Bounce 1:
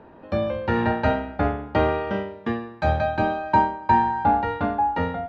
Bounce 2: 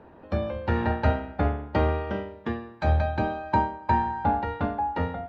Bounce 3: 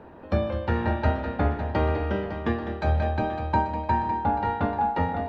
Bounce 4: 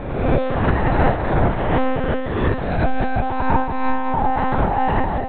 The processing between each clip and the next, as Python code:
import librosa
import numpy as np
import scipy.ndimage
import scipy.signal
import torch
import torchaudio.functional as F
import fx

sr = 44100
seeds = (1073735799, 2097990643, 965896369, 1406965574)

y1 = fx.hpss(x, sr, part='harmonic', gain_db=-6)
y1 = fx.peak_eq(y1, sr, hz=77.0, db=10.0, octaves=0.22)
y2 = fx.rider(y1, sr, range_db=4, speed_s=0.5)
y2 = fx.echo_multitap(y2, sr, ms=(154, 203, 556, 836), db=(-19.5, -10.5, -11.0, -14.0))
y3 = fx.spec_swells(y2, sr, rise_s=1.2)
y3 = fx.lpc_monotone(y3, sr, seeds[0], pitch_hz=260.0, order=10)
y3 = F.gain(torch.from_numpy(y3), 5.0).numpy()